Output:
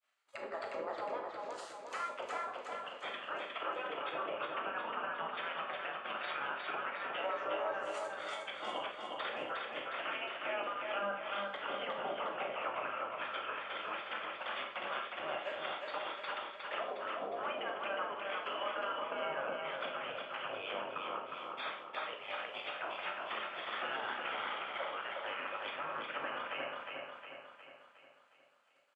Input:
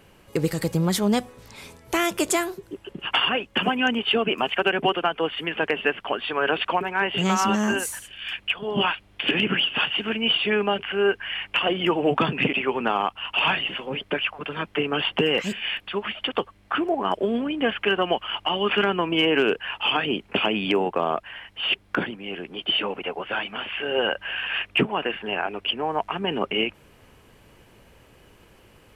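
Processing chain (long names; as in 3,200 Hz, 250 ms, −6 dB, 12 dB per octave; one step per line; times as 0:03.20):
treble cut that deepens with the level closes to 680 Hz, closed at −19 dBFS
downward expander −40 dBFS
gate on every frequency bin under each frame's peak −15 dB weak
transient designer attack +4 dB, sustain −2 dB
brickwall limiter −30.5 dBFS, peak gain reduction 15.5 dB
loudspeaker in its box 370–8,200 Hz, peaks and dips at 570 Hz +6 dB, 1,300 Hz +7 dB, 5,600 Hz −5 dB
double-tracking delay 19 ms −11.5 dB
repeating echo 360 ms, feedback 52%, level −3.5 dB
four-comb reverb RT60 0.43 s, combs from 28 ms, DRR 4 dB
level −2 dB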